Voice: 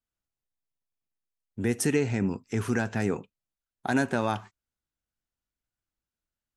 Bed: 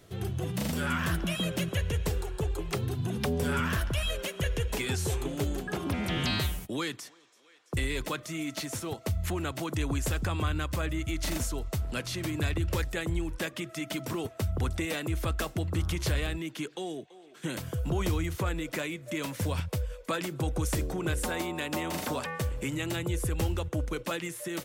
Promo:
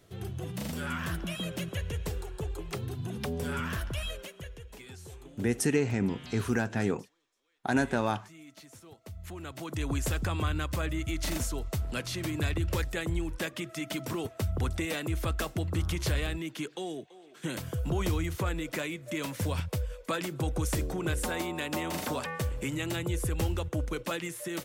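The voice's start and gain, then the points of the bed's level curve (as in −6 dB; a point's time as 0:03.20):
3.80 s, −1.5 dB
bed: 0:04.05 −4.5 dB
0:04.60 −16.5 dB
0:08.97 −16.5 dB
0:09.93 −0.5 dB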